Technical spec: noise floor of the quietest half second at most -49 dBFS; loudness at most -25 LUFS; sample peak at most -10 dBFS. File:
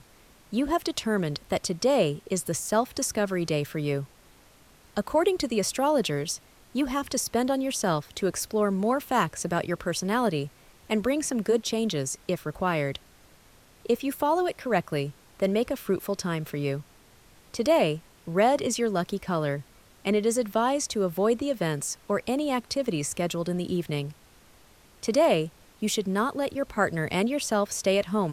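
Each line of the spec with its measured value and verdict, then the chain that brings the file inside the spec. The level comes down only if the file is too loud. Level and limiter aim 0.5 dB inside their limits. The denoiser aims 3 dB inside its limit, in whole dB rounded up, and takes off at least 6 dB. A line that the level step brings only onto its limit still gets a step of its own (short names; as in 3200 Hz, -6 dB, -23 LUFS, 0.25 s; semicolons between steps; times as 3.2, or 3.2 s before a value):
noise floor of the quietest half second -56 dBFS: OK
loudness -27.5 LUFS: OK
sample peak -9.0 dBFS: fail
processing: limiter -10.5 dBFS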